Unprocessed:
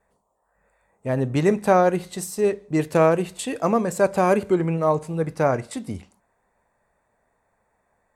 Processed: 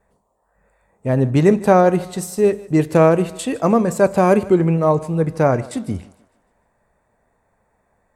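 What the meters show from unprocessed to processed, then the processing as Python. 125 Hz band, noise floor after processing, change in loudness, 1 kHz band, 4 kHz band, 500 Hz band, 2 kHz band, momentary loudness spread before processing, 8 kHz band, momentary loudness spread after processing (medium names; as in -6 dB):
+7.5 dB, -66 dBFS, +5.0 dB, +3.5 dB, +2.0 dB, +4.5 dB, +2.5 dB, 12 LU, +2.0 dB, 12 LU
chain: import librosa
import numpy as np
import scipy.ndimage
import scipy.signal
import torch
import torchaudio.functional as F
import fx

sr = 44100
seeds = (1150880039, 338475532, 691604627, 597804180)

p1 = fx.low_shelf(x, sr, hz=450.0, db=6.0)
p2 = p1 + fx.echo_thinned(p1, sr, ms=152, feedback_pct=46, hz=250.0, wet_db=-19.5, dry=0)
y = F.gain(torch.from_numpy(p2), 2.0).numpy()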